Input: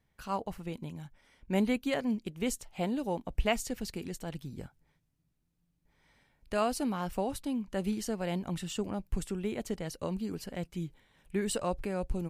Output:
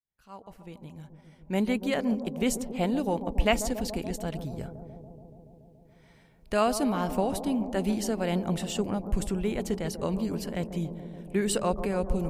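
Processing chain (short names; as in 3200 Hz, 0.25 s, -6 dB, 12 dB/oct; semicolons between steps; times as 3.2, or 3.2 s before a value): opening faded in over 2.43 s; analogue delay 0.142 s, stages 1024, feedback 80%, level -11 dB; gain +5 dB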